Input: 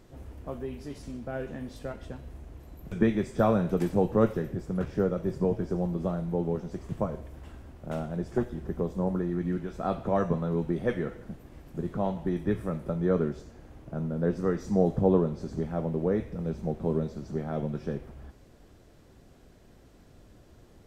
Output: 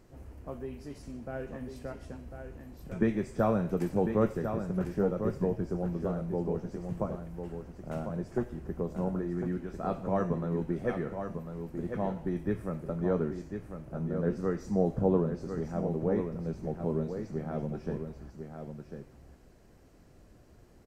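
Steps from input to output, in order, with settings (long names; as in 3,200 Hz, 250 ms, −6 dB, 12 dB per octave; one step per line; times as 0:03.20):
parametric band 3,500 Hz −7.5 dB 0.3 octaves
on a send: single-tap delay 1,048 ms −7.5 dB
on the sum: level −3.5 dB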